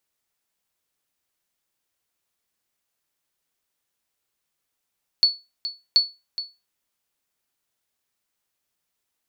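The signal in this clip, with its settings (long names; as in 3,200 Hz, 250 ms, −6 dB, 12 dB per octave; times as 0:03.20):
ping with an echo 4,430 Hz, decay 0.25 s, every 0.73 s, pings 2, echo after 0.42 s, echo −13 dB −8.5 dBFS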